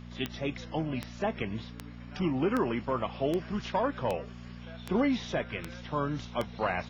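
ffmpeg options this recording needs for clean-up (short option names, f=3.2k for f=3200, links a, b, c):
-af "adeclick=t=4,bandreject=f=59.6:t=h:w=4,bandreject=f=119.2:t=h:w=4,bandreject=f=178.8:t=h:w=4,bandreject=f=238.4:t=h:w=4"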